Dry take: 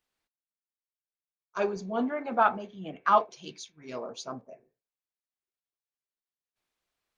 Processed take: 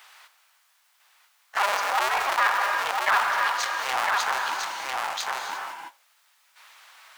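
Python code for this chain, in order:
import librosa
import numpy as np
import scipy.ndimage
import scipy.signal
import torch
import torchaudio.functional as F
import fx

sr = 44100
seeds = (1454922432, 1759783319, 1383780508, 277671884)

y = fx.cycle_switch(x, sr, every=2, mode='inverted')
y = scipy.signal.sosfilt(scipy.signal.butter(4, 860.0, 'highpass', fs=sr, output='sos'), y)
y = fx.high_shelf(y, sr, hz=3600.0, db=-9.5)
y = fx.leveller(y, sr, passes=1)
y = y + 10.0 ** (-11.0 / 20.0) * np.pad(y, (int(1001 * sr / 1000.0), 0))[:len(y)]
y = fx.rev_gated(y, sr, seeds[0], gate_ms=370, shape='flat', drr_db=11.0)
y = fx.env_flatten(y, sr, amount_pct=70)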